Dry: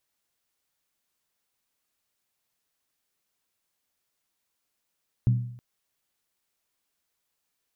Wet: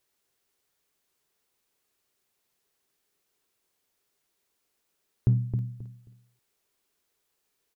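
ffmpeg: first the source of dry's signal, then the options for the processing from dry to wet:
-f lavfi -i "aevalsrc='0.168*pow(10,-3*t/0.66)*sin(2*PI*121*t)+0.0473*pow(10,-3*t/0.523)*sin(2*PI*192.9*t)+0.0133*pow(10,-3*t/0.452)*sin(2*PI*258.5*t)+0.00376*pow(10,-3*t/0.436)*sin(2*PI*277.8*t)+0.00106*pow(10,-3*t/0.405)*sin(2*PI*321*t)':d=0.32:s=44100"
-filter_complex "[0:a]equalizer=f=400:t=o:w=0.4:g=9,asplit=2[s0][s1];[s1]adelay=267,lowpass=f=2000:p=1,volume=0.447,asplit=2[s2][s3];[s3]adelay=267,lowpass=f=2000:p=1,volume=0.23,asplit=2[s4][s5];[s5]adelay=267,lowpass=f=2000:p=1,volume=0.23[s6];[s0][s2][s4][s6]amix=inputs=4:normalize=0,asplit=2[s7][s8];[s8]asoftclip=type=hard:threshold=0.075,volume=0.282[s9];[s7][s9]amix=inputs=2:normalize=0"

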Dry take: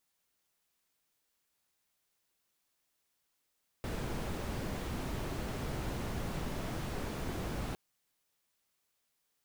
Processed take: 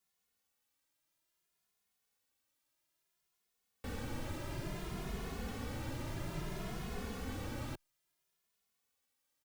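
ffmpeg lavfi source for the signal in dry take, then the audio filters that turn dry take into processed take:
-f lavfi -i "anoisesrc=c=brown:a=0.0661:d=3.91:r=44100:seed=1"
-filter_complex "[0:a]acrossover=split=530|890[s0][s1][s2];[s1]alimiter=level_in=17.8:limit=0.0631:level=0:latency=1,volume=0.0562[s3];[s0][s3][s2]amix=inputs=3:normalize=0,asplit=2[s4][s5];[s5]adelay=2.4,afreqshift=0.59[s6];[s4][s6]amix=inputs=2:normalize=1"

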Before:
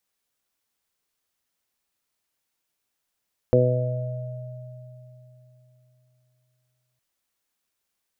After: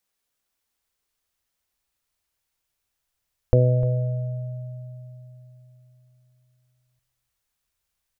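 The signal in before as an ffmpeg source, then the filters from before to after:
-f lavfi -i "aevalsrc='0.112*pow(10,-3*t/3.64)*sin(2*PI*125*t)+0.075*pow(10,-3*t/0.88)*sin(2*PI*250*t)+0.0794*pow(10,-3*t/0.79)*sin(2*PI*375*t)+0.188*pow(10,-3*t/1.09)*sin(2*PI*500*t)+0.0668*pow(10,-3*t/3.15)*sin(2*PI*625*t)':d=3.46:s=44100"
-af "aecho=1:1:302:0.15,asubboost=boost=6.5:cutoff=98"

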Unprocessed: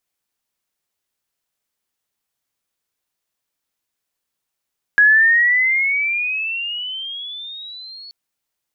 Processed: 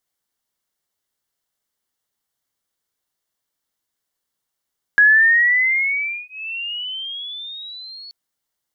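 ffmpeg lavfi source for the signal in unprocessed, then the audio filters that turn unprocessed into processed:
-f lavfi -i "aevalsrc='pow(10,(-7.5-27*t/3.13)/20)*sin(2*PI*1660*3.13/(17*log(2)/12)*(exp(17*log(2)/12*t/3.13)-1))':d=3.13:s=44100"
-af "bandreject=f=2500:w=5.6"

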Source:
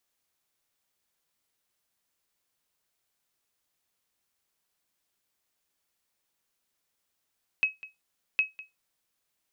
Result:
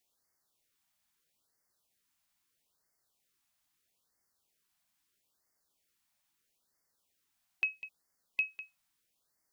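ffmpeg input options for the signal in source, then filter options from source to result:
-f lavfi -i "aevalsrc='0.158*(sin(2*PI*2560*mod(t,0.76))*exp(-6.91*mod(t,0.76)/0.18)+0.119*sin(2*PI*2560*max(mod(t,0.76)-0.2,0))*exp(-6.91*max(mod(t,0.76)-0.2,0)/0.18))':d=1.52:s=44100"
-af "alimiter=limit=0.0891:level=0:latency=1:release=130,afftfilt=real='re*(1-between(b*sr/1024,390*pow(3200/390,0.5+0.5*sin(2*PI*0.77*pts/sr))/1.41,390*pow(3200/390,0.5+0.5*sin(2*PI*0.77*pts/sr))*1.41))':imag='im*(1-between(b*sr/1024,390*pow(3200/390,0.5+0.5*sin(2*PI*0.77*pts/sr))/1.41,390*pow(3200/390,0.5+0.5*sin(2*PI*0.77*pts/sr))*1.41))':win_size=1024:overlap=0.75"

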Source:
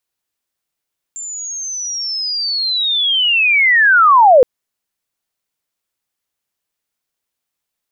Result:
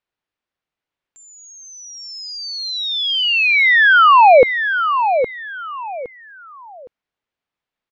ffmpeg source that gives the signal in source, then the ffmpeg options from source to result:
-f lavfi -i "aevalsrc='pow(10,(-24.5+21*t/3.27)/20)*sin(2*PI*(7300*t-6830*t*t/(2*3.27)))':d=3.27:s=44100"
-filter_complex "[0:a]lowpass=2900,asplit=2[s0][s1];[s1]aecho=0:1:814|1628|2442:0.398|0.111|0.0312[s2];[s0][s2]amix=inputs=2:normalize=0"

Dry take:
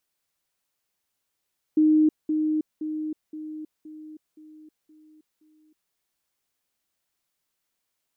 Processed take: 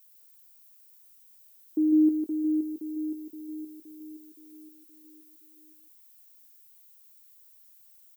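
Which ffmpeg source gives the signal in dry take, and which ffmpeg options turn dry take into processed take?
-f lavfi -i "aevalsrc='pow(10,(-15-6*floor(t/0.52))/20)*sin(2*PI*309*t)*clip(min(mod(t,0.52),0.32-mod(t,0.52))/0.005,0,1)':d=4.16:s=44100"
-filter_complex "[0:a]aemphasis=mode=production:type=riaa,asplit=2[s0][s1];[s1]adelay=22,volume=0.224[s2];[s0][s2]amix=inputs=2:normalize=0,asplit=2[s3][s4];[s4]aecho=0:1:152:0.562[s5];[s3][s5]amix=inputs=2:normalize=0"

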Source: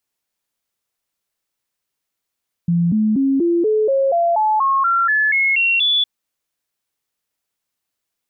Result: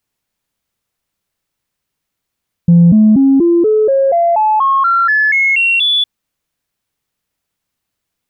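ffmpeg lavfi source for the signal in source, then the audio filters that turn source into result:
-f lavfi -i "aevalsrc='0.224*clip(min(mod(t,0.24),0.24-mod(t,0.24))/0.005,0,1)*sin(2*PI*171*pow(2,floor(t/0.24)/3)*mod(t,0.24))':d=3.36:s=44100"
-af "bass=f=250:g=8,treble=f=4000:g=-3,acontrast=30"

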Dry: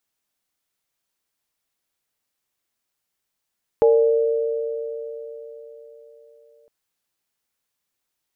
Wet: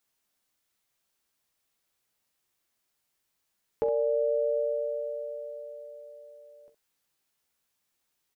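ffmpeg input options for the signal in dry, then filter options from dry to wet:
-f lavfi -i "aevalsrc='0.282*pow(10,-3*t/3.9)*sin(2*PI*457*t)+0.0891*pow(10,-3*t/4.87)*sin(2*PI*585*t)+0.0708*pow(10,-3*t/0.56)*sin(2*PI*833*t)':d=2.86:s=44100"
-filter_complex "[0:a]alimiter=limit=0.126:level=0:latency=1:release=414,asplit=2[s0][s1];[s1]aecho=0:1:14|43|65:0.447|0.158|0.282[s2];[s0][s2]amix=inputs=2:normalize=0"

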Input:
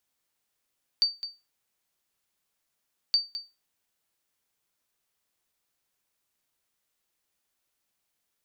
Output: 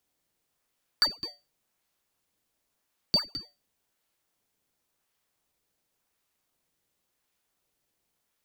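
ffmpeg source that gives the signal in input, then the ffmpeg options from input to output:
-f lavfi -i "aevalsrc='0.178*(sin(2*PI*4610*mod(t,2.12))*exp(-6.91*mod(t,2.12)/0.25)+0.237*sin(2*PI*4610*max(mod(t,2.12)-0.21,0))*exp(-6.91*max(mod(t,2.12)-0.21,0)/0.25))':d=4.24:s=44100"
-filter_complex "[0:a]asplit=2[s0][s1];[s1]acrusher=samples=19:mix=1:aa=0.000001:lfo=1:lforange=30.4:lforate=0.92,volume=0.355[s2];[s0][s2]amix=inputs=2:normalize=0"

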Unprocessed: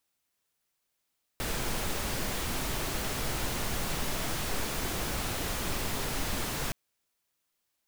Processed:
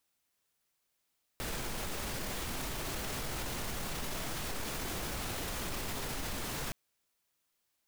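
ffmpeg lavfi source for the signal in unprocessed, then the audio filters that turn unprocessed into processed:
-f lavfi -i "anoisesrc=c=pink:a=0.129:d=5.32:r=44100:seed=1"
-af "alimiter=level_in=1.88:limit=0.0631:level=0:latency=1:release=23,volume=0.531"

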